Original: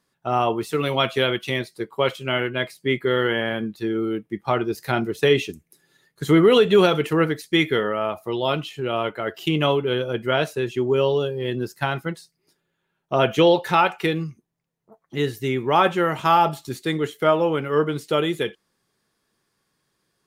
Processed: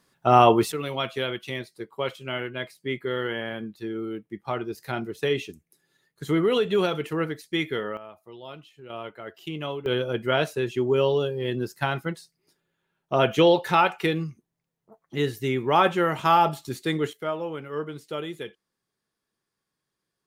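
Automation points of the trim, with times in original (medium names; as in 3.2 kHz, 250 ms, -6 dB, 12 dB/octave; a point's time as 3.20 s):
+5.5 dB
from 0.72 s -7.5 dB
from 7.97 s -18.5 dB
from 8.90 s -12 dB
from 9.86 s -2 dB
from 17.13 s -11 dB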